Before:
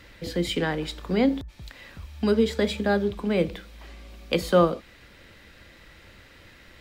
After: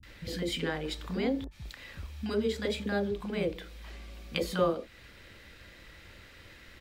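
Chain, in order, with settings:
in parallel at +2.5 dB: downward compressor, threshold −32 dBFS, peak gain reduction 17 dB
on the sum: three-band delay without the direct sound lows, highs, mids 30/60 ms, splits 220/800 Hz
level −8.5 dB

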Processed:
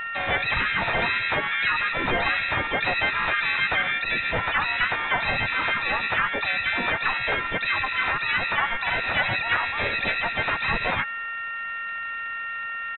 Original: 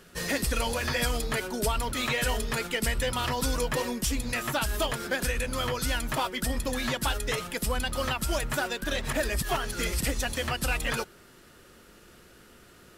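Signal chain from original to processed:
steady tone 760 Hz −37 dBFS
in parallel at +0.5 dB: brickwall limiter −25.5 dBFS, peak gain reduction 9 dB
on the sum: low-shelf EQ 130 Hz −7.5 dB
voice inversion scrambler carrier 2,600 Hz
pitch-shifted copies added −5 semitones −3 dB, +7 semitones −8 dB

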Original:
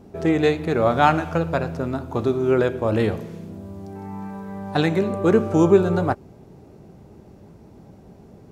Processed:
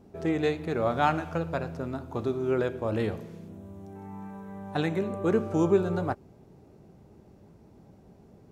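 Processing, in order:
0:03.48–0:05.30: parametric band 4,700 Hz −10.5 dB 0.25 octaves
level −8 dB

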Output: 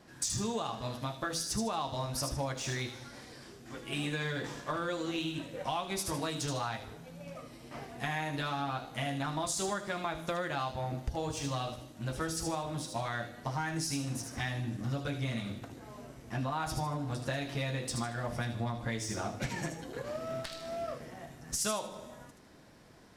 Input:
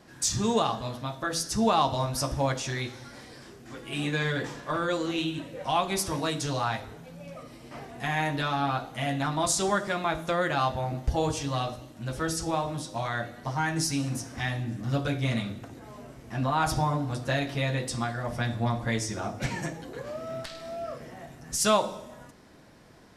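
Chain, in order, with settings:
in parallel at −5 dB: dead-zone distortion −39 dBFS
on the sum: downward compressor, threshold −28 dBFS, peak gain reduction 13.5 dB
delay with a high-pass on its return 77 ms, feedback 32%, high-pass 3,300 Hz, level −4 dB
level −3.5 dB

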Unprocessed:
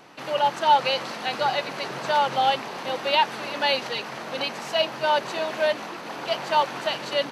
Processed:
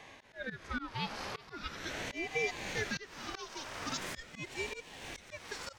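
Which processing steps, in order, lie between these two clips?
gliding playback speed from 83% → 170%
high-pass filter 220 Hz
parametric band 5,200 Hz +4.5 dB 0.3 octaves
notch filter 3,700 Hz, Q 11
volume swells 684 ms
downward compressor, threshold −30 dBFS, peak gain reduction 7.5 dB
harmonic and percussive parts rebalanced percussive −12 dB
ring modulator whose carrier an LFO sweeps 850 Hz, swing 65%, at 0.42 Hz
level +3.5 dB

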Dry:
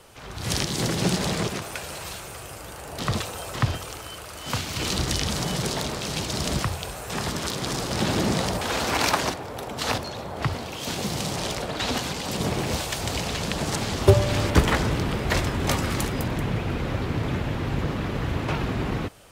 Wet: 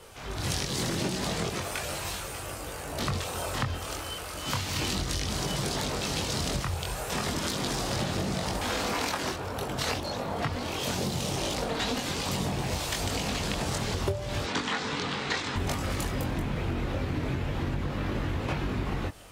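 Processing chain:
0:14.44–0:15.56: loudspeaker in its box 250–7,500 Hz, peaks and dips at 350 Hz −9 dB, 610 Hz −10 dB, 3,900 Hz +5 dB
multi-voice chorus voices 4, 0.35 Hz, delay 22 ms, depth 2.2 ms
downward compressor 16 to 1, threshold −30 dBFS, peak gain reduction 19.5 dB
level +4 dB

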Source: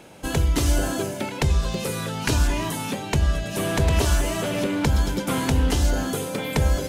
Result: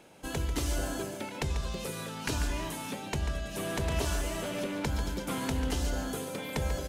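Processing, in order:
parametric band 91 Hz −4 dB 2.1 octaves
floating-point word with a short mantissa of 8 bits
on a send: single-tap delay 142 ms −10 dB
on the sum: level −9 dB

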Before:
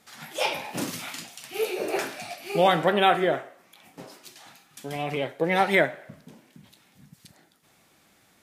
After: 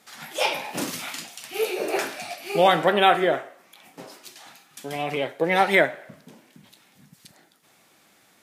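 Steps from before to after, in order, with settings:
high-pass filter 220 Hz 6 dB per octave
level +3 dB

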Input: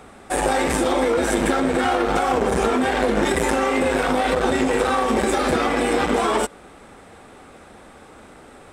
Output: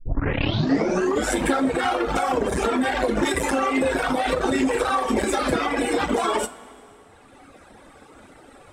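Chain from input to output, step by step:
turntable start at the beginning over 1.36 s
reverb reduction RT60 1.9 s
coupled-rooms reverb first 0.21 s, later 2.7 s, from −18 dB, DRR 9.5 dB

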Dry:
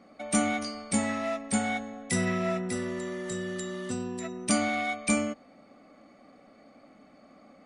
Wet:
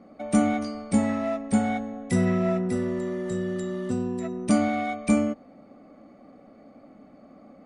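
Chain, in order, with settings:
tilt shelving filter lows +7 dB, about 1,200 Hz

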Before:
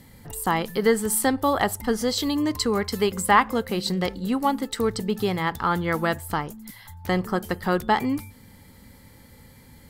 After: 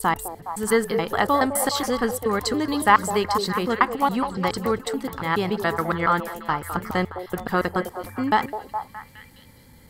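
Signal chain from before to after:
slices reordered back to front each 141 ms, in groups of 4
echo through a band-pass that steps 208 ms, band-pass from 520 Hz, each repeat 0.7 octaves, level −4.5 dB
dynamic equaliser 1,300 Hz, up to +5 dB, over −34 dBFS, Q 1.1
level −1 dB

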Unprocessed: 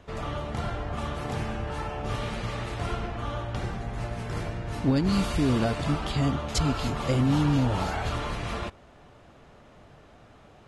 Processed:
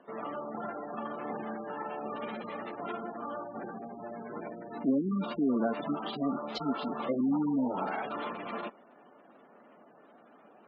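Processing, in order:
gate on every frequency bin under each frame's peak −20 dB strong
elliptic band-pass filter 220–3,900 Hz, stop band 40 dB
level −2 dB

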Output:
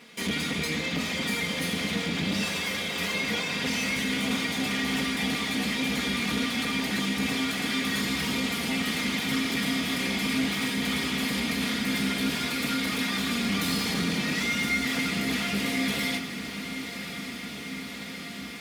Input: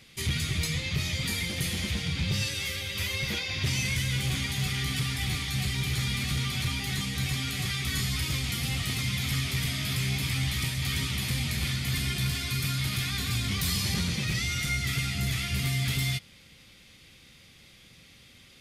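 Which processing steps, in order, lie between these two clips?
lower of the sound and its delayed copy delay 4.2 ms
high-pass filter 190 Hz 12 dB per octave
high-shelf EQ 3,100 Hz −10.5 dB
in parallel at +2 dB: brickwall limiter −33 dBFS, peak gain reduction 10 dB
on the sum: feedback delay with all-pass diffusion 1,157 ms, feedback 78%, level −11 dB
on a send at −10 dB: convolution reverb RT60 1.2 s, pre-delay 5 ms
on the sum: level +2.5 dB

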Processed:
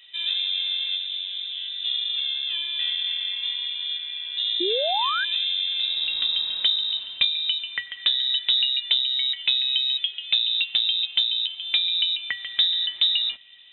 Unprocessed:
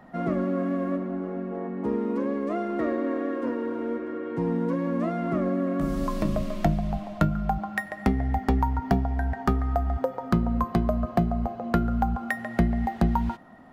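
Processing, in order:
voice inversion scrambler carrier 3,800 Hz
sound drawn into the spectrogram rise, 0:04.60–0:05.25, 330–1,700 Hz −26 dBFS

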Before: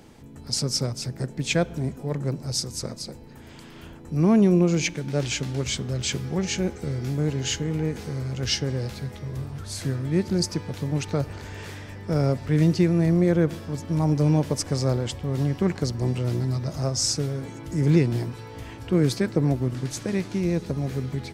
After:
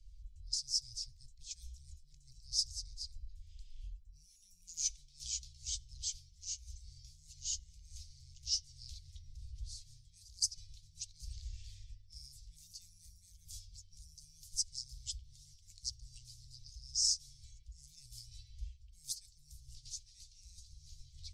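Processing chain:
spectral magnitudes quantised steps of 15 dB
low-pass that shuts in the quiet parts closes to 1,800 Hz, open at −16.5 dBFS
dynamic equaliser 200 Hz, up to +5 dB, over −34 dBFS, Q 2.2
reversed playback
downward compressor 6 to 1, threshold −34 dBFS, peak gain reduction 21 dB
reversed playback
inverse Chebyshev band-stop filter 200–1,400 Hz, stop band 70 dB
level +9 dB

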